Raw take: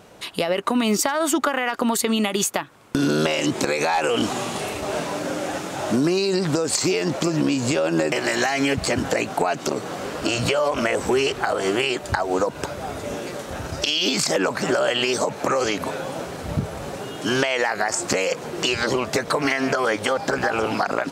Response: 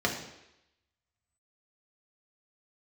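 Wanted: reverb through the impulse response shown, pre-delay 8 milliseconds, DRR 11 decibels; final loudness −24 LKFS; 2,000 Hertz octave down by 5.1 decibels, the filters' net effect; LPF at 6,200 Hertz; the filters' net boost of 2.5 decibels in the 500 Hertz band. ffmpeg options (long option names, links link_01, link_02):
-filter_complex "[0:a]lowpass=6200,equalizer=frequency=500:width_type=o:gain=3.5,equalizer=frequency=2000:width_type=o:gain=-7,asplit=2[link_01][link_02];[1:a]atrim=start_sample=2205,adelay=8[link_03];[link_02][link_03]afir=irnorm=-1:irlink=0,volume=-21.5dB[link_04];[link_01][link_04]amix=inputs=2:normalize=0,volume=-2dB"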